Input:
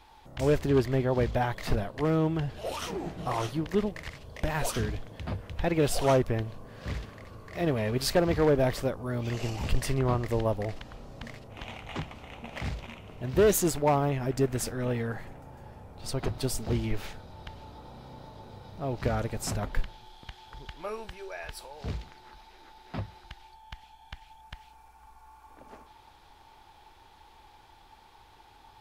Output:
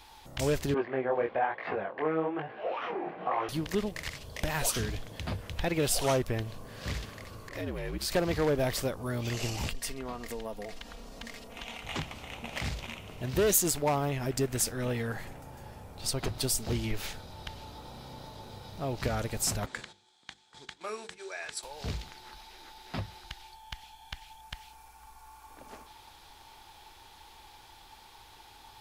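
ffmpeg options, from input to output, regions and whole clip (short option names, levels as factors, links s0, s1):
-filter_complex "[0:a]asettb=1/sr,asplit=3[s0][s1][s2];[s0]atrim=end=0.744[s3];[s1]atrim=start=0.74:end=3.49,asetpts=PTS-STARTPTS,afade=t=in:d=0.004:c=qsin,afade=t=out:st=2.746:d=0.004:c=qsin,highpass=280,equalizer=f=350:t=q:w=4:g=3,equalizer=f=500:t=q:w=4:g=6,equalizer=f=770:t=q:w=4:g=8,equalizer=f=1100:t=q:w=4:g=5,equalizer=f=1600:t=q:w=4:g=5,equalizer=f=2300:t=q:w=4:g=3,lowpass=f=2400:w=0.5412,lowpass=f=2400:w=1.3066,flanger=delay=18:depth=7.8:speed=1.1[s4];[s2]atrim=start=3.486[s5];[s3][s4]acrossfade=d=0.004:c1=hsin:c2=qsin[s6];[s6][s5]acrossfade=d=0.004:c1=qsin:c2=hsin,asettb=1/sr,asplit=3[s7][s8][s9];[s7]atrim=end=7.494[s10];[s8]atrim=start=7.49:end=8.12,asetpts=PTS-STARTPTS,afade=t=in:d=0.004:c=qsin,afade=t=out:st=0.626:d=0.004:c=qsin,acompressor=threshold=0.0158:ratio=2:attack=3.2:release=140:knee=1:detection=peak,afreqshift=-65,adynamicequalizer=threshold=0.00224:dfrequency=2300:dqfactor=0.7:tfrequency=2300:tqfactor=0.7:attack=5:release=100:ratio=0.375:range=2.5:mode=cutabove:tftype=highshelf[s11];[s9]atrim=start=8.116[s12];[s10][s11]acrossfade=d=0.004:c1=hsin:c2=qsin[s13];[s13][s12]acrossfade=d=0.004:c1=qsin:c2=hsin,asettb=1/sr,asplit=3[s14][s15][s16];[s14]atrim=end=9.694[s17];[s15]atrim=start=9.69:end=11.85,asetpts=PTS-STARTPTS,afade=t=in:d=0.004:c=qsin,afade=t=out:st=2.156:d=0.004:c=qsin,equalizer=f=110:t=o:w=0.84:g=-9.5,aecho=1:1:4.3:0.48,atrim=end_sample=95256,acompressor=threshold=0.00708:ratio=2:attack=3.2:release=140:knee=1:detection=peak[s18];[s16]atrim=start=11.846[s19];[s17][s18]acrossfade=d=0.004:c1=hsin:c2=qsin[s20];[s20][s19]acrossfade=d=0.004:c1=qsin:c2=hsin,asettb=1/sr,asplit=3[s21][s22][s23];[s21]atrim=end=19.664[s24];[s22]atrim=start=19.66:end=21.63,asetpts=PTS-STARTPTS,afade=t=in:d=0.004:c=qsin,afade=t=out:st=1.966:d=0.004:c=qsin,agate=range=0.2:threshold=0.00501:ratio=16:release=100:detection=peak,highpass=210,equalizer=f=580:t=q:w=4:g=-5,equalizer=f=880:t=q:w=4:g=-6,equalizer=f=2900:t=q:w=4:g=-6,equalizer=f=5000:t=q:w=4:g=-4,equalizer=f=7800:t=q:w=4:g=6,lowpass=f=8800:w=0.5412,lowpass=f=8800:w=1.3066,bandreject=f=50:t=h:w=6,bandreject=f=100:t=h:w=6,bandreject=f=150:t=h:w=6,bandreject=f=200:t=h:w=6,bandreject=f=250:t=h:w=6,bandreject=f=300:t=h:w=6,bandreject=f=350:t=h:w=6,bandreject=f=400:t=h:w=6,bandreject=f=450:t=h:w=6,bandreject=f=500:t=h:w=6[s25];[s23]atrim=start=21.626[s26];[s24][s25]acrossfade=d=0.004:c1=hsin:c2=qsin[s27];[s27][s26]acrossfade=d=0.004:c1=qsin:c2=hsin,highshelf=f=2800:g=11,acompressor=threshold=0.0251:ratio=1.5"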